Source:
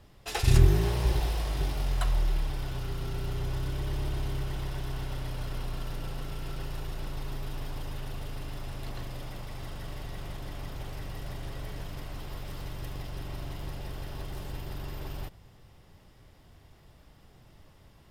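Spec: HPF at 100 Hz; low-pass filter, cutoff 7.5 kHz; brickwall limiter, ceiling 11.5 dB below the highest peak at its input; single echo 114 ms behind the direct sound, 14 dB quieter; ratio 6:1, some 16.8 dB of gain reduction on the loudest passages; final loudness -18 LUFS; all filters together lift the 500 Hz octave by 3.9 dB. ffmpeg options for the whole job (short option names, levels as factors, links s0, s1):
-af "highpass=100,lowpass=7500,equalizer=f=500:t=o:g=5.5,acompressor=threshold=0.0141:ratio=6,alimiter=level_in=4.22:limit=0.0631:level=0:latency=1,volume=0.237,aecho=1:1:114:0.2,volume=23.7"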